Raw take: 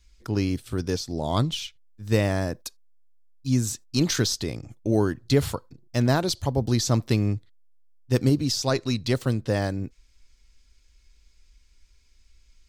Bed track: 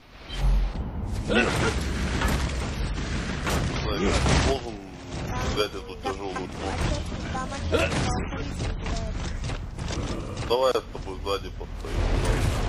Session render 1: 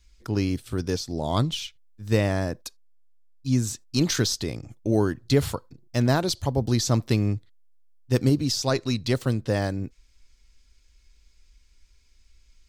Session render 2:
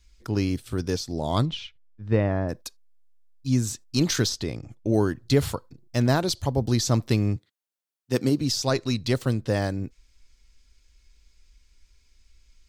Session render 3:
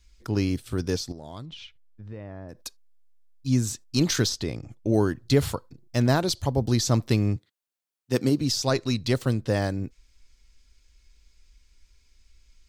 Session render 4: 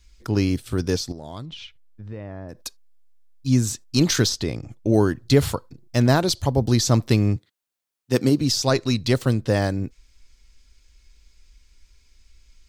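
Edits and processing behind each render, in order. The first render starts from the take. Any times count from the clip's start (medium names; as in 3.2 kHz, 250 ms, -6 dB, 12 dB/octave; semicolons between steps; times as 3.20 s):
2.13–3.86 s: treble shelf 8.4 kHz -4.5 dB
1.45–2.48 s: low-pass 3.5 kHz -> 1.4 kHz; 4.29–4.94 s: treble shelf 7.1 kHz -9 dB; 7.36–8.41 s: high-pass 170 Hz
1.12–2.66 s: compression 4:1, threshold -39 dBFS
trim +4 dB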